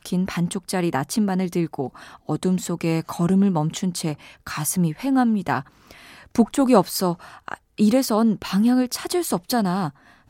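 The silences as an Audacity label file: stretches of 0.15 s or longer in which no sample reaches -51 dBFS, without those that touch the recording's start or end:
7.580000	7.780000	silence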